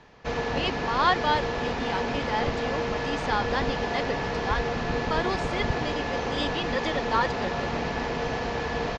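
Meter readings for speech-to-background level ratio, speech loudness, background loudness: -1.5 dB, -30.5 LUFS, -29.0 LUFS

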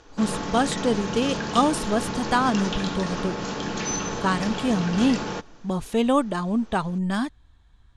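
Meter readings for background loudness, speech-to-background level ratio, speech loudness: -29.5 LUFS, 4.5 dB, -25.0 LUFS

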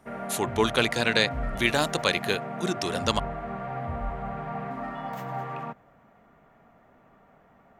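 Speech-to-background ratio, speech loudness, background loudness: 8.0 dB, -26.5 LUFS, -34.5 LUFS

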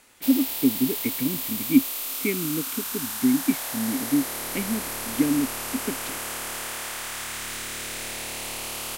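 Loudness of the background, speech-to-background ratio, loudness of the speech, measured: -29.5 LUFS, 3.0 dB, -26.5 LUFS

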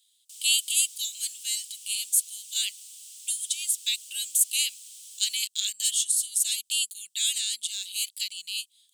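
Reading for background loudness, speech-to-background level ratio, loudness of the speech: -43.0 LUFS, 17.0 dB, -26.0 LUFS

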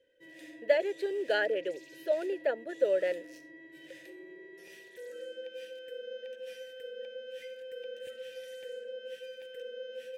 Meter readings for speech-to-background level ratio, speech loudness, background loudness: 14.0 dB, -31.5 LUFS, -45.5 LUFS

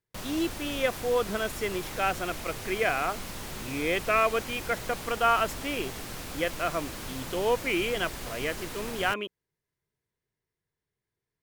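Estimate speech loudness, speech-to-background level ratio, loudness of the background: -29.5 LUFS, 8.5 dB, -38.0 LUFS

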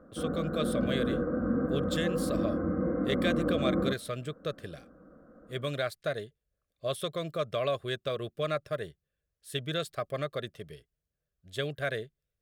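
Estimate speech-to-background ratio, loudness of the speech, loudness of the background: -4.0 dB, -35.0 LUFS, -31.0 LUFS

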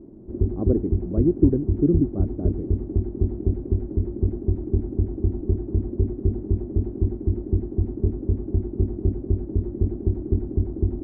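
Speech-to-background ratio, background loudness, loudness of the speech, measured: 1.5 dB, -26.0 LUFS, -24.5 LUFS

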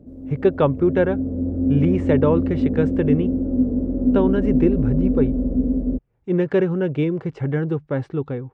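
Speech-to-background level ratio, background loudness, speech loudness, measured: 0.0 dB, -22.0 LUFS, -22.0 LUFS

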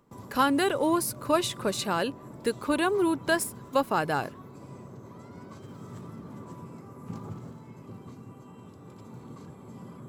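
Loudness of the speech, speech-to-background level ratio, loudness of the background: -27.5 LUFS, 17.0 dB, -44.5 LUFS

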